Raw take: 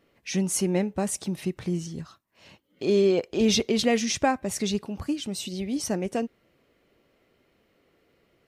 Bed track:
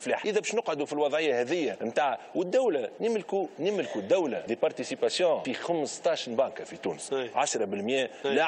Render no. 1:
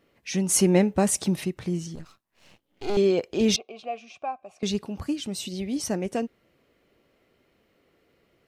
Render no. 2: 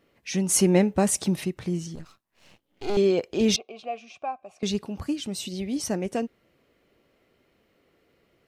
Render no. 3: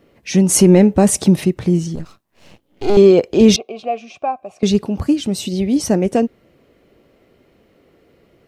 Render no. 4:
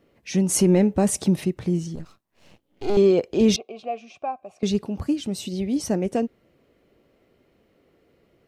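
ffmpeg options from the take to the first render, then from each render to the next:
-filter_complex "[0:a]asettb=1/sr,asplit=3[a][b][c];[a]atrim=end=1.954[d];[b]atrim=start=1.95:end=2.97,asetpts=PTS-STARTPTS,afade=t=in:d=0.004:c=qsin,afade=t=out:st=1.016:d=0.004:c=qsin,aeval=exprs='max(val(0),0)':c=same[e];[c]atrim=start=2.966[f];[d][e]acrossfade=d=0.004:c1=hsin:c2=qsin[g];[g][f]acrossfade=d=0.004:c1=qsin:c2=hsin,asettb=1/sr,asplit=3[h][i][j];[h]atrim=end=3.564[k];[i]atrim=start=3.56:end=4.63,asetpts=PTS-STARTPTS,afade=t=in:d=0.004:c=qsin,afade=t=out:st=1.066:d=0.004:c=qsin,asplit=3[l][m][n];[l]bandpass=f=730:t=q:w=8,volume=0dB[o];[m]bandpass=f=1.09k:t=q:w=8,volume=-6dB[p];[n]bandpass=f=2.44k:t=q:w=8,volume=-9dB[q];[o][p][q]amix=inputs=3:normalize=0[r];[j]atrim=start=4.626[s];[k][r]acrossfade=d=0.004:c1=hsin:c2=qsin[t];[t][s]acrossfade=d=0.004:c1=qsin:c2=hsin,asplit=3[u][v][w];[u]atrim=end=0.492[x];[v]atrim=start=0.488:end=1.442,asetpts=PTS-STARTPTS,volume=5.5dB[y];[w]atrim=start=1.438[z];[x][y]acrossfade=d=0.004:c1=hsin:c2=hsin[aa];[aa][z]acrossfade=d=0.004:c1=hsin:c2=hsin"
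-af anull
-filter_complex "[0:a]acrossover=split=780|5900[a][b][c];[a]acontrast=52[d];[d][b][c]amix=inputs=3:normalize=0,alimiter=level_in=7dB:limit=-1dB:release=50:level=0:latency=1"
-af "volume=-8dB"

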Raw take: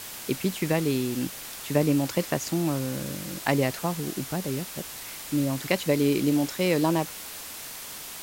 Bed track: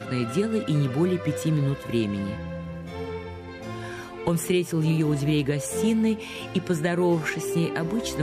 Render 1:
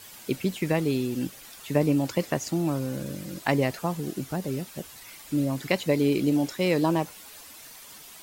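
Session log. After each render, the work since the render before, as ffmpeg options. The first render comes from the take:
-af "afftdn=nr=10:nf=-40"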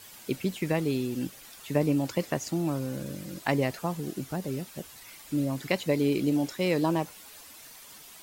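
-af "volume=-2.5dB"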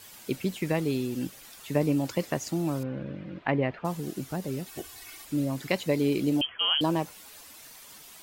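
-filter_complex "[0:a]asettb=1/sr,asplit=3[a][b][c];[a]atrim=end=2.834[d];[b]atrim=start=2.83:end=3.85,asetpts=PTS-STARTPTS,afade=t=in:d=0.004:c=qsin,afade=t=out:st=1.016:d=0.004:c=qsin,lowpass=f=2.8k:w=0.5412,lowpass=f=2.8k:w=1.3066[e];[c]atrim=start=3.846[f];[d][e]acrossfade=d=0.004:c1=hsin:c2=qsin[g];[g][f]acrossfade=d=0.004:c1=qsin:c2=hsin,asettb=1/sr,asplit=3[h][i][j];[h]atrim=end=4.664[k];[i]atrim=start=4.66:end=5.25,asetpts=PTS-STARTPTS,afade=t=in:d=0.004:c=qsin,afade=t=out:st=0.586:d=0.004:c=qsin,aecho=1:1:2.7:0.91,atrim=end_sample=26019[l];[j]atrim=start=5.246[m];[k][l]acrossfade=d=0.004:c1=hsin:c2=qsin[n];[n][m]acrossfade=d=0.004:c1=qsin:c2=hsin,asettb=1/sr,asplit=3[o][p][q];[o]atrim=end=6.414[r];[p]atrim=start=6.41:end=6.81,asetpts=PTS-STARTPTS,afade=t=in:d=0.004:c=qsin,afade=t=out:st=0.396:d=0.004:c=qsin,lowpass=f=2.9k:t=q:w=0.5098,lowpass=f=2.9k:t=q:w=0.6013,lowpass=f=2.9k:t=q:w=0.9,lowpass=f=2.9k:t=q:w=2.563,afreqshift=-3400[s];[q]atrim=start=6.806[t];[r][s]acrossfade=d=0.004:c1=hsin:c2=qsin[u];[u][t]acrossfade=d=0.004:c1=qsin:c2=hsin"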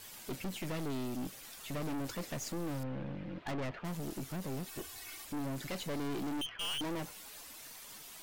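-af "aeval=exprs='(tanh(63.1*val(0)+0.45)-tanh(0.45))/63.1':c=same"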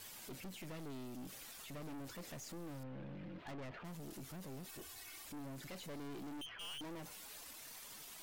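-af "alimiter=level_in=19dB:limit=-24dB:level=0:latency=1:release=21,volume=-19dB"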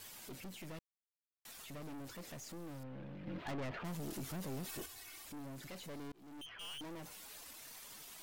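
-filter_complex "[0:a]asettb=1/sr,asplit=3[a][b][c];[a]atrim=end=3.274[d];[b]atrim=start=3.27:end=4.86,asetpts=PTS-STARTPTS,afade=t=in:d=0.004:c=qsin,afade=t=out:st=1.586:d=0.004:c=qsin,acontrast=58[e];[c]atrim=start=4.856[f];[d][e]acrossfade=d=0.004:c1=hsin:c2=qsin[g];[g][f]acrossfade=d=0.004:c1=qsin:c2=hsin,asplit=4[h][i][j][k];[h]atrim=end=0.79,asetpts=PTS-STARTPTS,afade=t=out:st=0.786:d=0.004:c=hsin[l];[i]atrim=start=0.79:end=1.45,asetpts=PTS-STARTPTS,volume=0[m];[j]atrim=start=1.45:end=6.12,asetpts=PTS-STARTPTS,afade=t=in:d=0.004:c=hsin,afade=t=out:st=4.666:d=0.004:c=hsin[n];[k]atrim=start=6.12,asetpts=PTS-STARTPTS,afade=t=in:d=0.58:c=qsin[o];[l][m][n][o]concat=n=4:v=0:a=1"

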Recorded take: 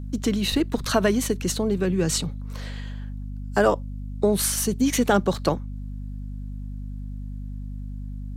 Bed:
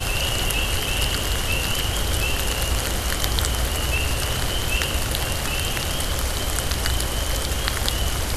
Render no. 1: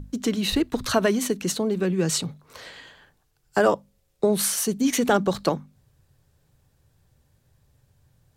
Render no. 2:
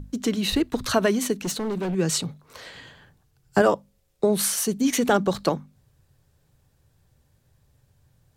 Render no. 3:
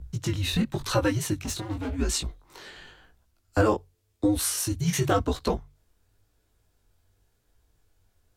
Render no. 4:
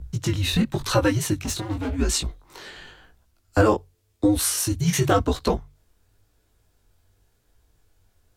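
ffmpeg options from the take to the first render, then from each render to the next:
-af "bandreject=f=50:t=h:w=6,bandreject=f=100:t=h:w=6,bandreject=f=150:t=h:w=6,bandreject=f=200:t=h:w=6,bandreject=f=250:t=h:w=6"
-filter_complex "[0:a]asettb=1/sr,asplit=3[a][b][c];[a]atrim=end=1.374[d];[b]atrim=start=1.37:end=1.95,asetpts=PTS-STARTPTS,afade=t=in:d=0.004:c=qsin,afade=t=out:st=0.576:d=0.004:c=qsin,volume=24dB,asoftclip=hard,volume=-24dB[e];[c]atrim=start=1.946[f];[d][e]acrossfade=d=0.004:c1=hsin:c2=qsin[g];[g][f]acrossfade=d=0.004:c1=qsin:c2=hsin,asettb=1/sr,asplit=3[h][i][j];[h]atrim=end=2.744[k];[i]atrim=start=2.74:end=3.62,asetpts=PTS-STARTPTS,afade=t=in:d=0.004:c=qsin,afade=t=out:st=0.876:d=0.004:c=qsin,equalizer=f=120:w=0.65:g=10.5[l];[j]atrim=start=3.616[m];[k][l]acrossfade=d=0.004:c1=hsin:c2=qsin[n];[n][m]acrossfade=d=0.004:c1=qsin:c2=hsin"
-af "afreqshift=-110,flanger=delay=16:depth=7:speed=0.93"
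-af "volume=4dB"

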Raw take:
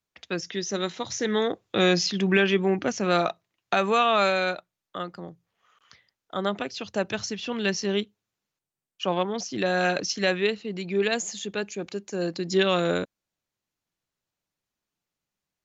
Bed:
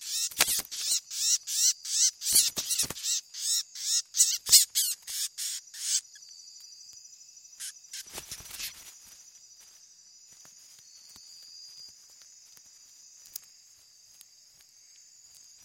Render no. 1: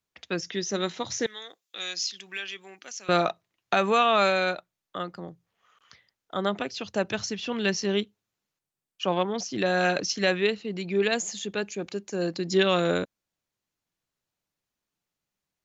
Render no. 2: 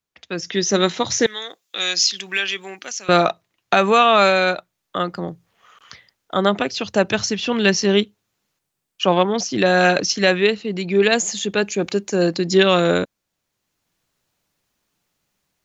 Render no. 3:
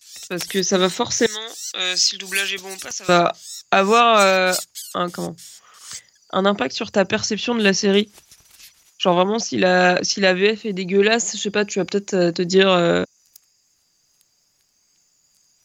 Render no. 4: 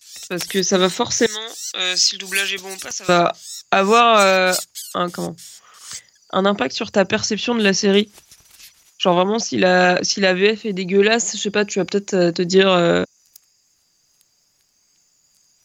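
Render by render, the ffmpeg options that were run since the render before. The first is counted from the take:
-filter_complex "[0:a]asettb=1/sr,asplit=3[a][b][c];[a]atrim=end=1.264[d];[b]atrim=start=1.26:end=3.09,asetpts=PTS-STARTPTS,afade=t=in:d=0.004:c=qsin,afade=t=out:st=1.826:d=0.004:c=qsin,aderivative[e];[c]atrim=start=3.086[f];[d][e]acrossfade=d=0.004:c1=hsin:c2=qsin[g];[g][f]acrossfade=d=0.004:c1=qsin:c2=hsin"
-af "dynaudnorm=f=340:g=3:m=13.5dB"
-filter_complex "[1:a]volume=-7dB[a];[0:a][a]amix=inputs=2:normalize=0"
-af "volume=1.5dB,alimiter=limit=-2dB:level=0:latency=1"

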